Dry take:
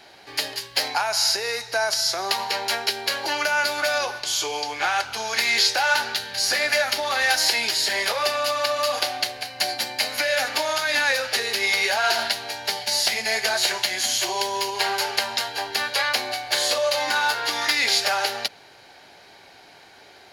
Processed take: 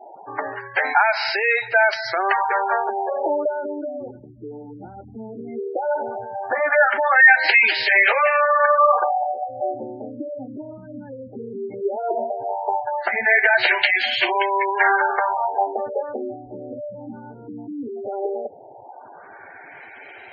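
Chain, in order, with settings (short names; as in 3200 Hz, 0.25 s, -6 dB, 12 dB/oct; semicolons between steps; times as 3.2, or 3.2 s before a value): LFO low-pass sine 0.16 Hz 220–2400 Hz; spectral gate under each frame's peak -15 dB strong; gain +5.5 dB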